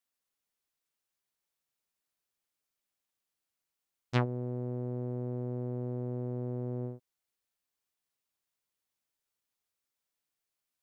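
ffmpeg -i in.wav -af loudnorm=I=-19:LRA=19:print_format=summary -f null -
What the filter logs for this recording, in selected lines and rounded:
Input Integrated:    -36.1 LUFS
Input True Peak:     -14.4 dBTP
Input LRA:             6.0 LU
Input Threshold:     -46.2 LUFS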